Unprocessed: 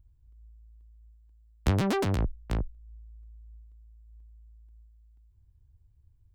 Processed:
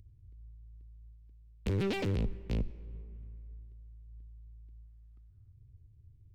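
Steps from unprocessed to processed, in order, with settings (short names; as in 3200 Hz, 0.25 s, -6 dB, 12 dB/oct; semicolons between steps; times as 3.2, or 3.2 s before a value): in parallel at +0.5 dB: compressor, threshold -36 dBFS, peak gain reduction 15 dB; on the sum: air absorption 340 m; hard clip -25.5 dBFS, distortion -9 dB; on a send at -19 dB: reverb RT60 2.3 s, pre-delay 72 ms; on the sum: spectral gain 4.83–5.53, 580–1300 Hz +11 dB; formant shift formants +6 st; band shelf 1000 Hz -11 dB; gain -2.5 dB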